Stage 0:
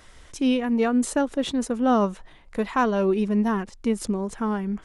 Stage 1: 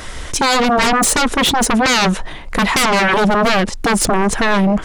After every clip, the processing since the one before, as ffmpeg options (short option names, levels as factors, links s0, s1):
-af "aeval=exprs='0.299*sin(PI/2*7.08*val(0)/0.299)':c=same"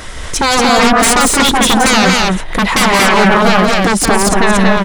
-af "aecho=1:1:174.9|233.2:0.501|0.794,volume=1.26"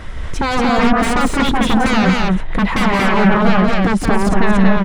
-af "bass=f=250:g=8,treble=f=4000:g=-13,volume=0.501"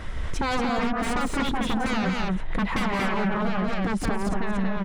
-af "acompressor=threshold=0.141:ratio=6,volume=0.596"